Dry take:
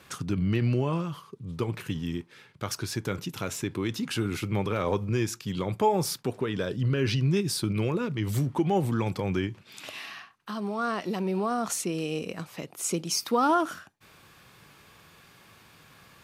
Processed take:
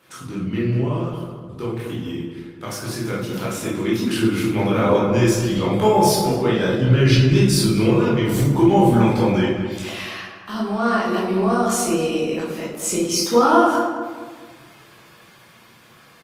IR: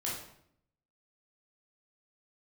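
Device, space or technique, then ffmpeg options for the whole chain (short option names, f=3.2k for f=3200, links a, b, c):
far-field microphone of a smart speaker: -filter_complex "[0:a]asplit=3[a][b][c];[a]afade=t=out:st=1.72:d=0.02[d];[b]highpass=f=47:w=0.5412,highpass=f=47:w=1.3066,afade=t=in:st=1.72:d=0.02,afade=t=out:st=2.12:d=0.02[e];[c]afade=t=in:st=2.12:d=0.02[f];[d][e][f]amix=inputs=3:normalize=0,asplit=2[g][h];[h]adelay=213,lowpass=f=1.5k:p=1,volume=-6.5dB,asplit=2[i][j];[j]adelay=213,lowpass=f=1.5k:p=1,volume=0.45,asplit=2[k][l];[l]adelay=213,lowpass=f=1.5k:p=1,volume=0.45,asplit=2[m][n];[n]adelay=213,lowpass=f=1.5k:p=1,volume=0.45,asplit=2[o][p];[p]adelay=213,lowpass=f=1.5k:p=1,volume=0.45[q];[g][i][k][m][o][q]amix=inputs=6:normalize=0[r];[1:a]atrim=start_sample=2205[s];[r][s]afir=irnorm=-1:irlink=0,highpass=150,dynaudnorm=f=1000:g=7:m=9dB" -ar 48000 -c:a libopus -b:a 32k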